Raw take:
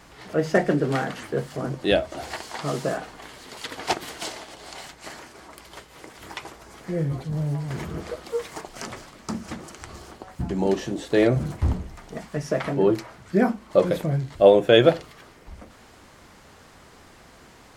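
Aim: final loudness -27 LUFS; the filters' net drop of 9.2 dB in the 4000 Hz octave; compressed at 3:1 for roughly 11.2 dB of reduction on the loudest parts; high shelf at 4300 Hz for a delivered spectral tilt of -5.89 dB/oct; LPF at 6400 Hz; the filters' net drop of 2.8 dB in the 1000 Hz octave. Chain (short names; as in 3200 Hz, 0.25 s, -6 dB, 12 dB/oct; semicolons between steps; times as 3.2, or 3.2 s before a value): LPF 6400 Hz; bell 1000 Hz -3.5 dB; bell 4000 Hz -7 dB; high shelf 4300 Hz -8.5 dB; compressor 3:1, threshold -26 dBFS; gain +5 dB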